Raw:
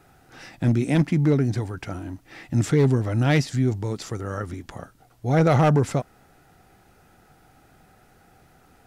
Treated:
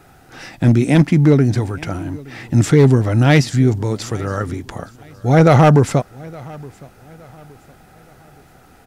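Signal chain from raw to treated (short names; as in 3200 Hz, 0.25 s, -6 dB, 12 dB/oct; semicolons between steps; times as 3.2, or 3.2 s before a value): feedback echo 0.868 s, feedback 38%, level -23 dB; gain +8 dB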